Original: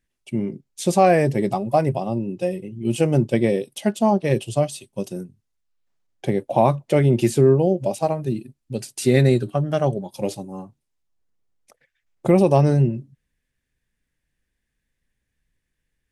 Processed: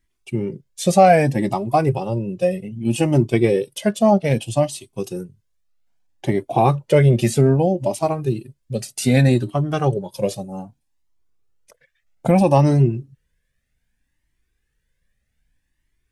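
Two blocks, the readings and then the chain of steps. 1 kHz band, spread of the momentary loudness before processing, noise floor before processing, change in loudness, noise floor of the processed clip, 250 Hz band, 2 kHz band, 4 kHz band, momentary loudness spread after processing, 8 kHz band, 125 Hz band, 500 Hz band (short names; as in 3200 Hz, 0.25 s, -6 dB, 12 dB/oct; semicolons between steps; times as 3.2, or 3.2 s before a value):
+3.5 dB, 15 LU, -78 dBFS, +2.0 dB, -72 dBFS, +1.5 dB, +3.0 dB, +3.0 dB, 15 LU, +3.0 dB, +2.5 dB, +1.0 dB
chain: cascading flanger rising 0.63 Hz; gain +7.5 dB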